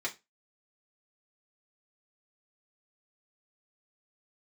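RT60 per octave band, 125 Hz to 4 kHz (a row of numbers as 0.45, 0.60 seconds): 0.25, 0.25, 0.25, 0.20, 0.20, 0.20 seconds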